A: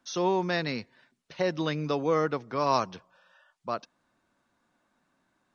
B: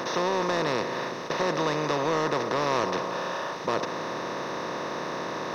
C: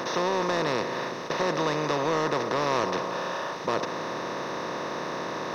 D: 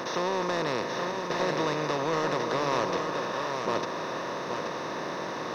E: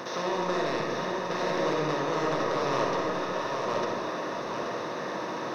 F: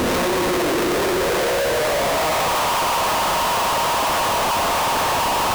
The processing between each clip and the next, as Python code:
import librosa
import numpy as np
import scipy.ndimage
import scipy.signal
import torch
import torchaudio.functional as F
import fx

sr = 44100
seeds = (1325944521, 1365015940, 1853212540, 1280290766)

y1 = fx.bin_compress(x, sr, power=0.2)
y1 = fx.leveller(y1, sr, passes=1)
y1 = y1 * librosa.db_to_amplitude(-8.5)
y2 = y1
y3 = y2 + 10.0 ** (-5.5 / 20.0) * np.pad(y2, (int(828 * sr / 1000.0), 0))[:len(y2)]
y3 = y3 * librosa.db_to_amplitude(-2.5)
y4 = fx.rev_freeverb(y3, sr, rt60_s=1.5, hf_ratio=0.35, predelay_ms=15, drr_db=-0.5)
y4 = y4 * librosa.db_to_amplitude(-3.5)
y5 = fx.filter_sweep_highpass(y4, sr, from_hz=220.0, to_hz=830.0, start_s=0.05, end_s=2.52, q=3.8)
y5 = fx.schmitt(y5, sr, flips_db=-38.5)
y5 = y5 * librosa.db_to_amplitude(5.5)